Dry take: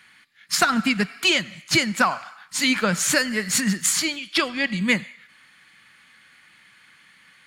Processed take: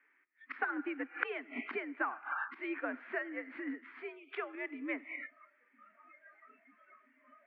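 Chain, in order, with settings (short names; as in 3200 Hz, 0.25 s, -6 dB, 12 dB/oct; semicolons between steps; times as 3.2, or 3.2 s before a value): spectral noise reduction 25 dB; flipped gate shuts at -24 dBFS, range -25 dB; mistuned SSB +79 Hz 190–2100 Hz; gain +9.5 dB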